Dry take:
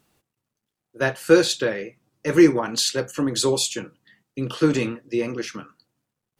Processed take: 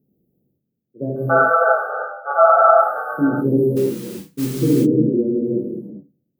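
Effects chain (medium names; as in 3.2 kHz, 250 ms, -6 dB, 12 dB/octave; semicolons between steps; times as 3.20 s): inverse Chebyshev band-stop 1.2–8.3 kHz, stop band 50 dB; peaking EQ 190 Hz +11 dB 2 oct; 1.16–3.12 s: ring modulator 1 kHz; bass shelf 150 Hz -8 dB; 3.70–4.46 s: modulation noise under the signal 11 dB; gated-style reverb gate 420 ms flat, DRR -7 dB; trim -5 dB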